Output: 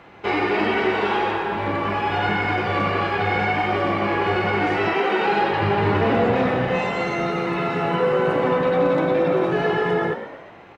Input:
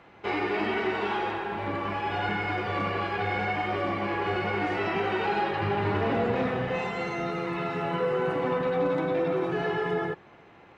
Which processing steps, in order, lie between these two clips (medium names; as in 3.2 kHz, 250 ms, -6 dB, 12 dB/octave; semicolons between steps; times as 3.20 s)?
4.93–5.39 s: high-pass 300 Hz -> 110 Hz 24 dB/octave; frequency-shifting echo 120 ms, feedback 52%, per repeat +56 Hz, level -11.5 dB; trim +7 dB